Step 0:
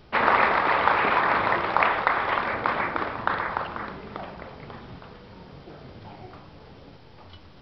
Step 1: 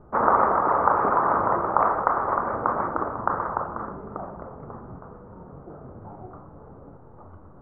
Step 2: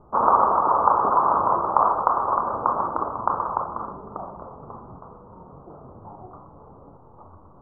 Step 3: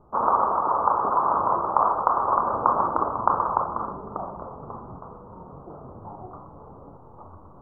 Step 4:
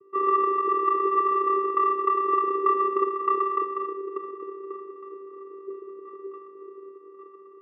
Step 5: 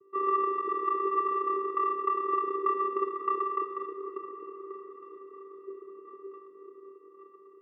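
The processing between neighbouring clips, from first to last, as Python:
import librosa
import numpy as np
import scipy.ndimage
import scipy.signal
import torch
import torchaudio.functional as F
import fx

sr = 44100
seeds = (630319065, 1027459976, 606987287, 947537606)

y1 = scipy.signal.sosfilt(scipy.signal.ellip(4, 1.0, 80, 1300.0, 'lowpass', fs=sr, output='sos'), x)
y1 = y1 * 10.0 ** (2.5 / 20.0)
y2 = fx.high_shelf_res(y1, sr, hz=1500.0, db=-11.5, q=3.0)
y2 = y2 * 10.0 ** (-3.0 / 20.0)
y3 = fx.rider(y2, sr, range_db=3, speed_s=0.5)
y3 = y3 * 10.0 ** (-1.0 / 20.0)
y4 = fx.vocoder(y3, sr, bands=8, carrier='square', carrier_hz=390.0)
y5 = fx.echo_diffused(y4, sr, ms=450, feedback_pct=64, wet_db=-13)
y5 = y5 * 10.0 ** (-5.0 / 20.0)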